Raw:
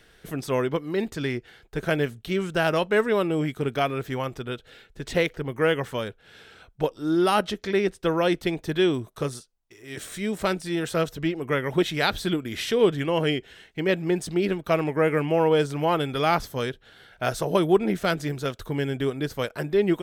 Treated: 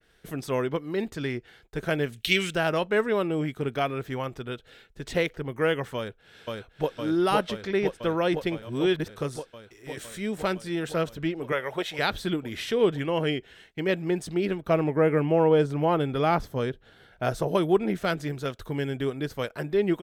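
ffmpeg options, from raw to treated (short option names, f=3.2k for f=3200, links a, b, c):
-filter_complex "[0:a]asplit=3[a][b][c];[a]afade=t=out:st=2.12:d=0.02[d];[b]highshelf=f=1.6k:t=q:w=1.5:g=13,afade=t=in:st=2.12:d=0.02,afade=t=out:st=2.54:d=0.02[e];[c]afade=t=in:st=2.54:d=0.02[f];[d][e][f]amix=inputs=3:normalize=0,asplit=2[g][h];[h]afade=t=in:st=5.96:d=0.01,afade=t=out:st=6.95:d=0.01,aecho=0:1:510|1020|1530|2040|2550|3060|3570|4080|4590|5100|5610|6120:0.794328|0.635463|0.50837|0.406696|0.325357|0.260285|0.208228|0.166583|0.133266|0.106613|0.0852903|0.0682323[i];[g][i]amix=inputs=2:normalize=0,asettb=1/sr,asplit=3[j][k][l];[j]atrim=end=11.524[m];[k]atrim=start=11.52:end=11.99,asetpts=PTS-STARTPTS,afade=t=in:d=0.004:c=qsin,afade=t=out:st=0.466:d=0.004:c=qsin,lowshelf=f=390:t=q:w=1.5:g=-10[n];[l]atrim=start=11.986[o];[m][n]acrossfade=d=0.004:c1=hsin:c2=qsin[p];[p][o]acrossfade=d=0.004:c1=qsin:c2=hsin,asettb=1/sr,asplit=3[q][r][s];[q]atrim=end=14.624[t];[r]atrim=start=14.62:end=17.48,asetpts=PTS-STARTPTS,afade=t=in:d=0.004:c=qsin,afade=t=out:st=2.856:d=0.004:c=qsin,tiltshelf=f=1.1k:g=4[u];[s]atrim=start=17.476[v];[t][u]acrossfade=d=0.004:c1=hsin:c2=qsin[w];[w][v]acrossfade=d=0.004:c1=qsin:c2=hsin,asplit=3[x][y][z];[x]atrim=end=8.622[aa];[y]atrim=start=8.618:end=9.102,asetpts=PTS-STARTPTS,areverse[ab];[z]atrim=start=9.098[ac];[aa][ab]acrossfade=d=0.004:c1=hsin:c2=hsin[ad];[ad][ac]acrossfade=d=0.004:c1=hsin:c2=hsin,agate=range=-33dB:threshold=-51dB:ratio=3:detection=peak,adynamicequalizer=threshold=0.00631:dfrequency=3800:dqfactor=0.7:tfrequency=3800:tqfactor=0.7:attack=5:release=100:ratio=0.375:range=2:mode=cutabove:tftype=highshelf,volume=-2.5dB"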